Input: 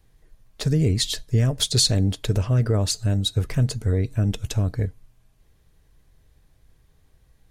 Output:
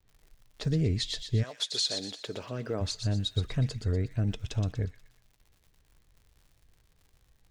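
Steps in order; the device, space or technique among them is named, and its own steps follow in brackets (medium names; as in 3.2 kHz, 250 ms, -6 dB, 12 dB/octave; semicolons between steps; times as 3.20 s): expander -56 dBFS; lo-fi chain (low-pass 5.3 kHz 12 dB/octave; wow and flutter; crackle 84 per s -43 dBFS); 1.42–2.80 s: high-pass 700 Hz -> 210 Hz 12 dB/octave; feedback echo behind a high-pass 121 ms, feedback 41%, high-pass 2.2 kHz, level -6 dB; trim -7 dB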